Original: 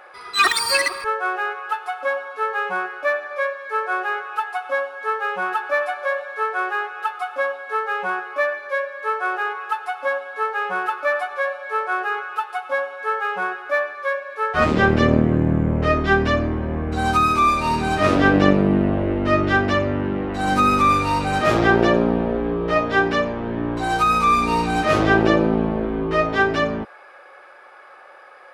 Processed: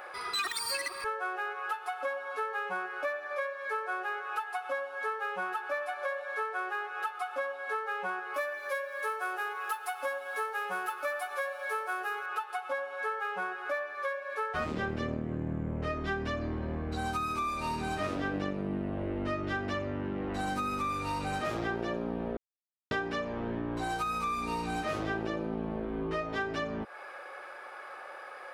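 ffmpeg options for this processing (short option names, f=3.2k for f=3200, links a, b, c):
-filter_complex "[0:a]asettb=1/sr,asplit=3[a][b][c];[a]atrim=end=8.344[d];[b]atrim=start=8.34:end=12.26,asetpts=PTS-STARTPTS,afade=t=in:d=0.004:c=qsin,afade=t=out:st=3.916:d=0.004:c=qsin,aemphasis=mode=production:type=50fm[e];[c]atrim=start=12.256[f];[d][e]acrossfade=d=0.004:c1=hsin:c2=qsin[g];[g][f]acrossfade=d=0.004:c1=qsin:c2=hsin,asettb=1/sr,asplit=3[h][i][j];[h]atrim=end=16.414[k];[i]atrim=start=16.41:end=16.97,asetpts=PTS-STARTPTS,afade=t=in:d=0.004:c=qsin,afade=t=out:st=0.556:d=0.004:c=qsin,equalizer=f=4.3k:t=o:w=0.42:g=9[l];[j]atrim=start=16.966[m];[k][l]acrossfade=d=0.004:c1=hsin:c2=qsin[n];[n][m]acrossfade=d=0.004:c1=qsin:c2=hsin,asplit=3[o][p][q];[o]atrim=end=22.37,asetpts=PTS-STARTPTS,afade=t=out:st=22.366:d=0.004:c=hsin[r];[p]atrim=start=22.37:end=22.91,asetpts=PTS-STARTPTS,volume=0[s];[q]atrim=start=22.91,asetpts=PTS-STARTPTS,afade=t=in:d=0.004:c=hsin[t];[r][s][t]concat=n=3:v=0:a=1,highshelf=f=9.1k:g=7.5,acompressor=threshold=-32dB:ratio=6"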